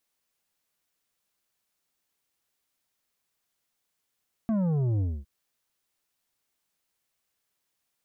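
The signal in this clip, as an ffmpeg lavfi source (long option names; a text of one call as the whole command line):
ffmpeg -f lavfi -i "aevalsrc='0.0631*clip((0.76-t)/0.25,0,1)*tanh(2.66*sin(2*PI*230*0.76/log(65/230)*(exp(log(65/230)*t/0.76)-1)))/tanh(2.66)':duration=0.76:sample_rate=44100" out.wav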